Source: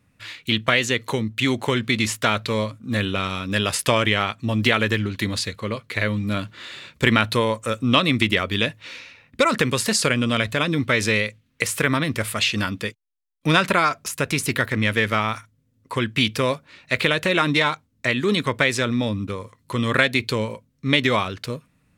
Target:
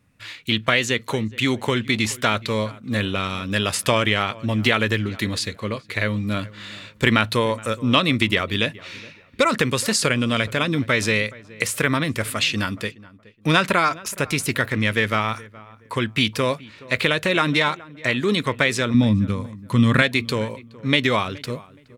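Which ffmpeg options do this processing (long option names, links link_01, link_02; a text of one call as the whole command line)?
ffmpeg -i in.wav -filter_complex "[0:a]asettb=1/sr,asplit=3[link_01][link_02][link_03];[link_01]atrim=end=18.944[link_04];[link_02]atrim=start=18.94:end=20.02,asetpts=PTS-STARTPTS,afade=type=in:duration=0.004:curve=qsin,afade=type=out:start_time=1.076:duration=0.004:curve=qsin,lowshelf=frequency=290:width_type=q:width=1.5:gain=7[link_05];[link_03]atrim=start=20.016[link_06];[link_04][link_05]acrossfade=duration=0.004:curve1=hsin:curve2=qsin[link_07];[link_07][link_06]acrossfade=duration=0.004:curve1=qsin:curve2=hsin,asplit=2[link_08][link_09];[link_09]adelay=421,lowpass=frequency=1700:poles=1,volume=-20dB,asplit=2[link_10][link_11];[link_11]adelay=421,lowpass=frequency=1700:poles=1,volume=0.29[link_12];[link_10][link_12]amix=inputs=2:normalize=0[link_13];[link_08][link_13]amix=inputs=2:normalize=0" out.wav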